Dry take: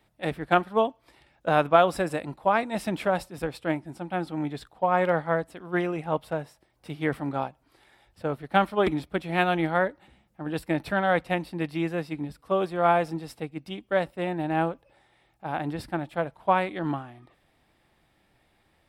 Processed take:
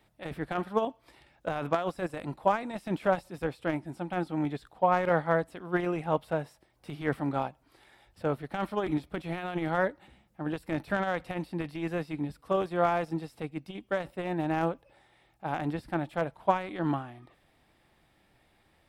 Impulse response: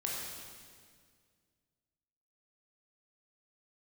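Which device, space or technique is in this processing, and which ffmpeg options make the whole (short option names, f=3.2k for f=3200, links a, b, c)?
de-esser from a sidechain: -filter_complex "[0:a]asplit=2[a][b];[b]highpass=f=4.1k:w=0.5412,highpass=f=4.1k:w=1.3066,apad=whole_len=832623[c];[a][c]sidechaincompress=threshold=-56dB:ratio=10:attack=1.4:release=21"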